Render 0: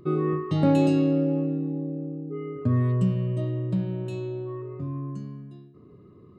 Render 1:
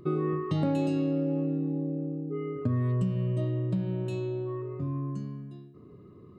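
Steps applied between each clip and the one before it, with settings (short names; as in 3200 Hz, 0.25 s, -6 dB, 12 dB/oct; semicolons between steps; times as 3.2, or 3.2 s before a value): compressor 4:1, threshold -25 dBFS, peak gain reduction 8 dB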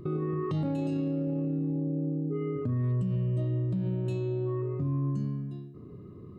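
low shelf 300 Hz +7.5 dB; limiter -23.5 dBFS, peak gain reduction 12 dB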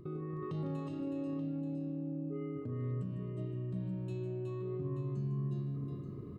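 reverse; compressor 6:1, threshold -36 dBFS, peak gain reduction 9.5 dB; reverse; tapped delay 0.153/0.369/0.881 s -10.5/-4/-10 dB; gain -1.5 dB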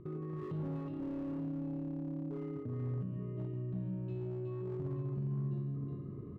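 air absorption 390 m; slew limiter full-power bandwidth 4.9 Hz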